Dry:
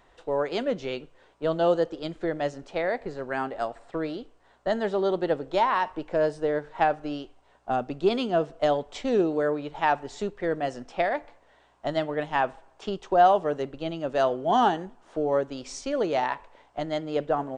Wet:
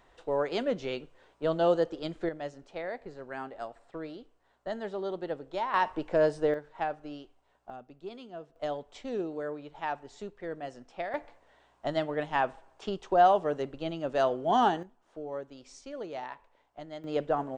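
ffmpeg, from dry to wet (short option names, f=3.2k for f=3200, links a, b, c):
-af "asetnsamples=n=441:p=0,asendcmd='2.29 volume volume -9.5dB;5.74 volume volume -0.5dB;6.54 volume volume -9.5dB;7.7 volume volume -19dB;8.56 volume volume -10.5dB;11.14 volume volume -3dB;14.83 volume volume -13dB;17.04 volume volume -3dB',volume=-2.5dB"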